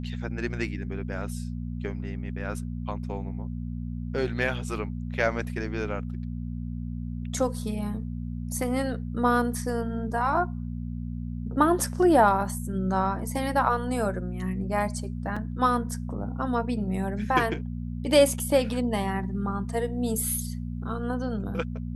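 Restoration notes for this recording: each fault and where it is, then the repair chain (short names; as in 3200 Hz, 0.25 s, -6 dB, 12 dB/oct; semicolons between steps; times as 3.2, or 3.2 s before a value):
hum 60 Hz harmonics 4 -33 dBFS
15.36–15.37 gap 5 ms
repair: de-hum 60 Hz, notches 4; interpolate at 15.36, 5 ms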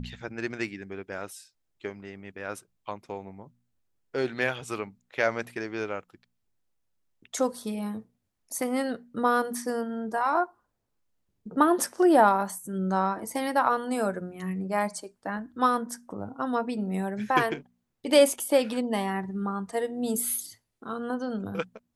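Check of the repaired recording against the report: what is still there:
none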